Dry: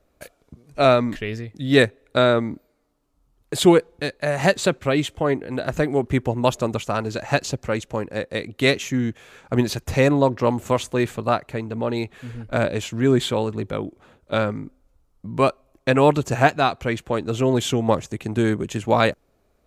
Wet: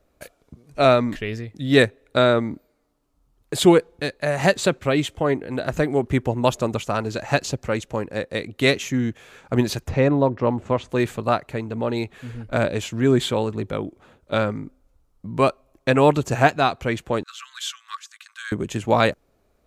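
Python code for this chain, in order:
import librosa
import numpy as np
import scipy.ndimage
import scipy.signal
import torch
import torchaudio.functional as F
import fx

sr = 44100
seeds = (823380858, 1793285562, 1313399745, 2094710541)

y = fx.spacing_loss(x, sr, db_at_10k=23, at=(9.87, 10.89), fade=0.02)
y = fx.cheby_ripple_highpass(y, sr, hz=1100.0, ripple_db=6, at=(17.23, 18.52))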